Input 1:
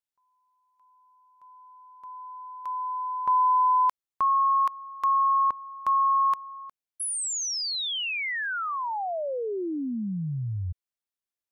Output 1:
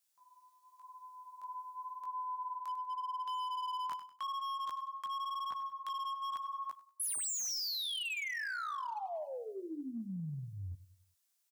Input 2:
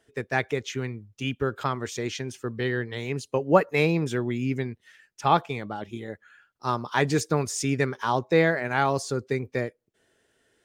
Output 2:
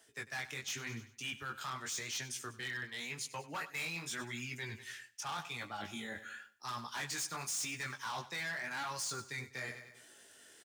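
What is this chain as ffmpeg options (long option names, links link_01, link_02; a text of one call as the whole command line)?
ffmpeg -i in.wav -filter_complex "[0:a]asplit=2[link_01][link_02];[link_02]adelay=13,volume=-12.5dB[link_03];[link_01][link_03]amix=inputs=2:normalize=0,flanger=delay=16.5:depth=6.9:speed=0.89,acrossover=split=190|860[link_04][link_05][link_06];[link_04]acompressor=threshold=-40dB:ratio=4[link_07];[link_05]acompressor=threshold=-50dB:ratio=4[link_08];[link_06]acompressor=threshold=-27dB:ratio=4[link_09];[link_07][link_08][link_09]amix=inputs=3:normalize=0,bass=frequency=250:gain=-8,treble=frequency=4000:gain=9,asoftclip=type=hard:threshold=-31dB,highpass=84,equalizer=frequency=460:width_type=o:width=0.84:gain=-6,aecho=1:1:98|196|294|392:0.126|0.0629|0.0315|0.0157,areverse,acompressor=threshold=-46dB:ratio=8:attack=1.9:release=317:knee=6:detection=rms,areverse,volume=9.5dB" out.wav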